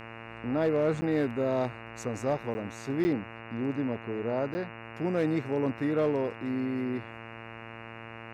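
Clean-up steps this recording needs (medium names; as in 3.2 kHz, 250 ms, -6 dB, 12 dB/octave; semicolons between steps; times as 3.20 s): clip repair -19.5 dBFS; de-hum 114 Hz, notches 25; interpolate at 1.01/2.54/3.04/4.54 s, 10 ms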